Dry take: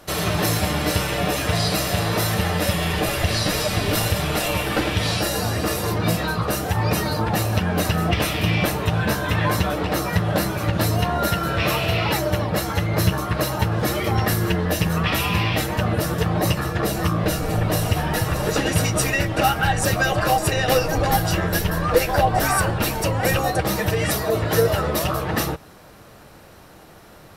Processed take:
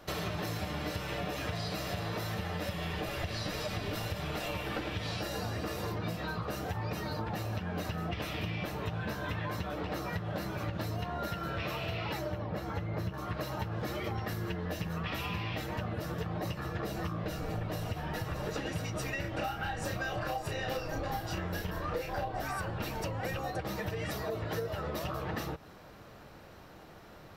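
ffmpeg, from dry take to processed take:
-filter_complex "[0:a]asettb=1/sr,asplit=3[s0][s1][s2];[s0]atrim=end=12.324[s3];[s1]atrim=start=12.32:end=13.14,asetpts=PTS-STARTPTS,afade=t=in:d=0.004:c=qsin,afade=t=out:st=0.816:d=0.004:c=qsin,highshelf=f=2400:g=-9[s4];[s2]atrim=start=13.136[s5];[s3][s4]acrossfade=d=0.004:c1=hsin:c2=qsin[s6];[s6][s5]acrossfade=d=0.004:c1=qsin:c2=hsin,asettb=1/sr,asplit=3[s7][s8][s9];[s7]atrim=end=19.214[s10];[s8]atrim=start=19.21:end=22.42,asetpts=PTS-STARTPTS,afade=t=in:d=0.004:c=qsin,afade=t=out:st=3.206:d=0.004:c=qsin,asplit=2[s11][s12];[s12]adelay=33,volume=0.668[s13];[s11][s13]amix=inputs=2:normalize=0,atrim=end_sample=141561[s14];[s9]atrim=start=22.416[s15];[s10][s14]acrossfade=d=0.004:c1=hsin:c2=qsin[s16];[s16][s15]acrossfade=d=0.004:c1=qsin:c2=hsin,equalizer=f=10000:t=o:w=0.96:g=-11.5,acompressor=threshold=0.0447:ratio=6,volume=0.501"

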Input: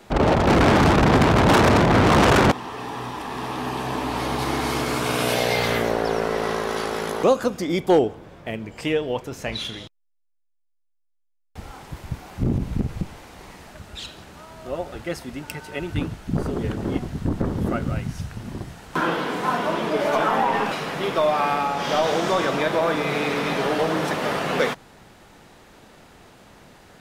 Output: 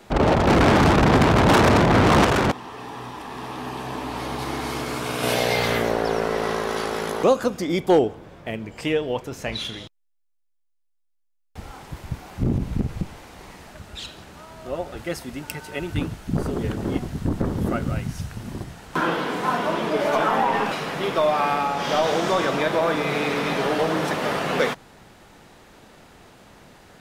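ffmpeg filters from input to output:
-filter_complex "[0:a]asettb=1/sr,asplit=3[s0][s1][s2];[s0]atrim=end=14.974[s3];[s1]atrim=start=14.97:end=18.64,asetpts=PTS-STARTPTS,afade=t=in:d=0.004:c=qsin,afade=t=out:st=3.666:d=0.004:c=qsin,highshelf=f=7100:g=5[s4];[s2]atrim=start=18.636[s5];[s3][s4]acrossfade=d=0.004:c1=hsin:c2=qsin[s6];[s6][s5]acrossfade=d=0.004:c1=qsin:c2=hsin,asplit=3[s7][s8][s9];[s7]atrim=end=2.252[s10];[s8]atrim=start=2.248:end=5.232,asetpts=PTS-STARTPTS,volume=0.631[s11];[s9]atrim=start=5.228[s12];[s10][s11]acrossfade=d=0.004:c1=hsin:c2=hsin[s13];[s13][s12]acrossfade=d=0.004:c1=hsin:c2=hsin"

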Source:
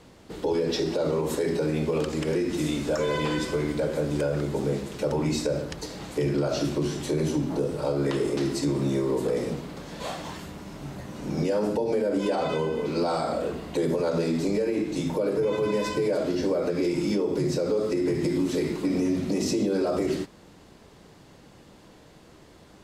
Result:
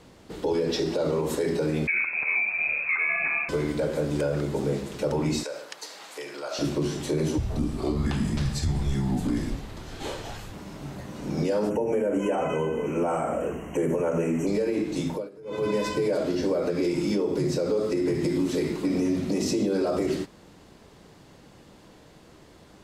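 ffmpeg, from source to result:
-filter_complex "[0:a]asettb=1/sr,asplit=3[s0][s1][s2];[s0]atrim=end=1.874[s3];[s1]atrim=start=1.87:end=3.49,asetpts=PTS-STARTPTS,afade=t=in:d=0.004:c=qsin,afade=t=out:st=1.616:d=0.004:c=qsin,lowpass=f=2300:t=q:w=0.5098,lowpass=f=2300:t=q:w=0.6013,lowpass=f=2300:t=q:w=0.9,lowpass=f=2300:t=q:w=2.563,afreqshift=-2700[s4];[s2]atrim=start=3.486[s5];[s3][s4]acrossfade=d=0.004:c1=hsin:c2=qsin[s6];[s6][s5]acrossfade=d=0.004:c1=qsin:c2=hsin,asettb=1/sr,asplit=3[s7][s8][s9];[s7]atrim=end=5.434[s10];[s8]atrim=start=5.43:end=6.59,asetpts=PTS-STARTPTS,afade=t=in:d=0.004:c=qsin,afade=t=out:st=1.156:d=0.004:c=qsin,highpass=810[s11];[s9]atrim=start=6.586[s12];[s10][s11]acrossfade=d=0.004:c1=hsin:c2=qsin[s13];[s13][s12]acrossfade=d=0.004:c1=qsin:c2=hsin,asettb=1/sr,asplit=3[s14][s15][s16];[s14]atrim=end=7.384[s17];[s15]atrim=start=7.38:end=10.53,asetpts=PTS-STARTPTS,afade=t=in:d=0.004:c=qsin,afade=t=out:st=3.146:d=0.004:c=qsin,afreqshift=-200[s18];[s16]atrim=start=10.526[s19];[s17][s18]acrossfade=d=0.004:c1=hsin:c2=qsin[s20];[s20][s19]acrossfade=d=0.004:c1=qsin:c2=hsin,asplit=3[s21][s22][s23];[s21]afade=t=out:st=11.69:d=0.02[s24];[s22]asuperstop=centerf=4200:order=20:qfactor=1.7,afade=t=in:st=11.69:d=0.02,afade=t=out:st=14.46:d=0.02[s25];[s23]afade=t=in:st=14.46:d=0.02[s26];[s24][s25][s26]amix=inputs=3:normalize=0,asplit=3[s27][s28][s29];[s27]atrim=end=15.29,asetpts=PTS-STARTPTS,afade=t=out:st=15:d=0.29:c=qsin:silence=0.0891251[s30];[s28]atrim=start=15.29:end=15.44,asetpts=PTS-STARTPTS,volume=0.0891[s31];[s29]atrim=start=15.44,asetpts=PTS-STARTPTS,afade=t=in:d=0.29:c=qsin:silence=0.0891251[s32];[s30][s31][s32]concat=n=3:v=0:a=1"

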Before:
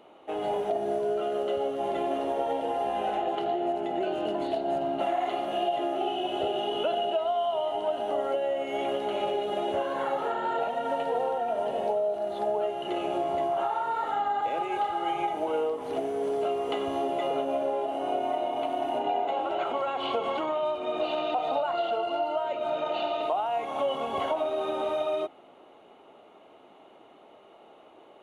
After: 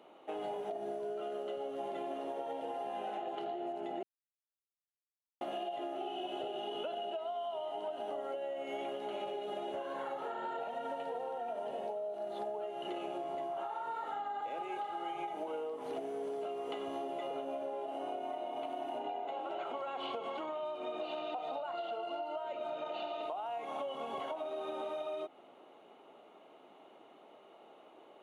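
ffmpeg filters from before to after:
-filter_complex "[0:a]asplit=3[s0][s1][s2];[s0]atrim=end=4.03,asetpts=PTS-STARTPTS,afade=t=out:st=4.026:d=0.004:c=hsin[s3];[s1]atrim=start=4.03:end=5.41,asetpts=PTS-STARTPTS,volume=0[s4];[s2]atrim=start=5.41,asetpts=PTS-STARTPTS,afade=t=in:d=0.004:c=hsin[s5];[s3][s4][s5]concat=n=3:v=0:a=1,highpass=150,acompressor=threshold=0.0251:ratio=6,volume=0.596"

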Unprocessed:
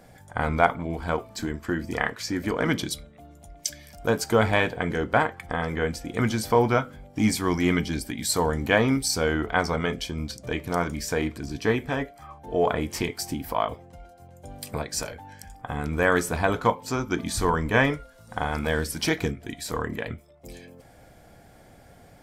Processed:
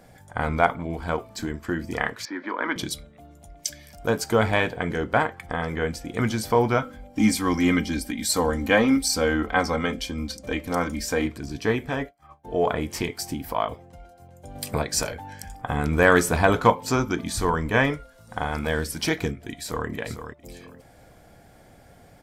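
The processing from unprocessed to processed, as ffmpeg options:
-filter_complex "[0:a]asettb=1/sr,asplit=3[s0][s1][s2];[s0]atrim=end=2.254[s3];[s1]atrim=start=2.25:end=2.76,asetpts=PTS-STARTPTS,afade=t=in:d=0.004:c=qsin,afade=t=out:st=0.506:d=0.004:c=qsin,highpass=f=300:w=0.5412,highpass=f=300:w=1.3066,equalizer=f=440:t=q:w=4:g=-10,equalizer=f=690:t=q:w=4:g=-6,equalizer=f=1000:t=q:w=4:g=7,equalizer=f=1600:t=q:w=4:g=3,equalizer=f=2800:t=q:w=4:g=-8,lowpass=f=3600:w=0.5412,lowpass=f=3600:w=1.3066[s4];[s2]atrim=start=2.756[s5];[s3][s4]acrossfade=d=0.004:c1=hsin:c2=qsin[s6];[s6][s5]acrossfade=d=0.004:c1=qsin:c2=hsin,asettb=1/sr,asplit=3[s7][s8][s9];[s7]atrim=end=6.824[s10];[s8]atrim=start=6.82:end=11.26,asetpts=PTS-STARTPTS,afade=t=in:d=0.004:c=qsin,afade=t=out:st=4.436:d=0.004:c=qsin,aecho=1:1:3.8:0.66,atrim=end_sample=195804[s11];[s9]atrim=start=11.256[s12];[s10][s11]acrossfade=d=0.004:c1=hsin:c2=qsin[s13];[s13][s12]acrossfade=d=0.004:c1=qsin:c2=hsin,asettb=1/sr,asplit=3[s14][s15][s16];[s14]atrim=end=11.924[s17];[s15]atrim=start=11.92:end=12.45,asetpts=PTS-STARTPTS,afade=t=in:d=0.004:c=qsin,afade=t=out:st=0.526:d=0.004:c=qsin,agate=range=0.0224:threshold=0.0126:ratio=3:release=100:detection=peak[s18];[s16]atrim=start=12.446[s19];[s17][s18]acrossfade=d=0.004:c1=hsin:c2=qsin[s20];[s20][s19]acrossfade=d=0.004:c1=qsin:c2=hsin,asettb=1/sr,asplit=3[s21][s22][s23];[s21]atrim=end=14.554[s24];[s22]atrim=start=14.55:end=17.12,asetpts=PTS-STARTPTS,afade=t=in:d=0.004:c=qsin,afade=t=out:st=2.566:d=0.004:c=qsin,acontrast=24[s25];[s23]atrim=start=17.116[s26];[s24][s25]acrossfade=d=0.004:c1=hsin:c2=qsin[s27];[s27][s26]acrossfade=d=0.004:c1=qsin:c2=hsin,asplit=2[s28][s29];[s29]afade=t=in:st=19.48:d=0.01,afade=t=out:st=19.88:d=0.01,aecho=0:1:450|900|1350:0.354813|0.0709627|0.0141925[s30];[s28][s30]amix=inputs=2:normalize=0"

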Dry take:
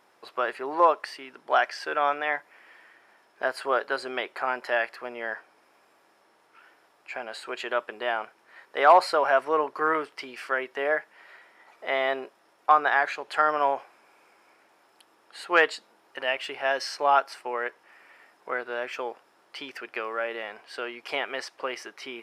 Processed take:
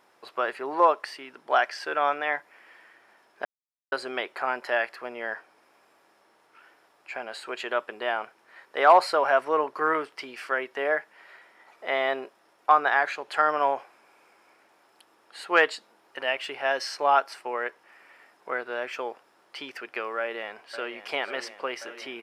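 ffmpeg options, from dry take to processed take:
-filter_complex "[0:a]asplit=2[s0][s1];[s1]afade=t=in:st=20.19:d=0.01,afade=t=out:st=20.99:d=0.01,aecho=0:1:540|1080|1620|2160|2700|3240|3780|4320|4860|5400|5940|6480:0.281838|0.239563|0.203628|0.173084|0.147121|0.125053|0.106295|0.0903509|0.0767983|0.0652785|0.0554867|0.0471637[s2];[s0][s2]amix=inputs=2:normalize=0,asplit=3[s3][s4][s5];[s3]atrim=end=3.45,asetpts=PTS-STARTPTS,afade=t=out:st=3.446:d=0.004:c=hsin[s6];[s4]atrim=start=3.45:end=3.92,asetpts=PTS-STARTPTS,volume=0[s7];[s5]atrim=start=3.92,asetpts=PTS-STARTPTS,afade=t=in:d=0.004:c=hsin[s8];[s6][s7][s8]concat=n=3:v=0:a=1"

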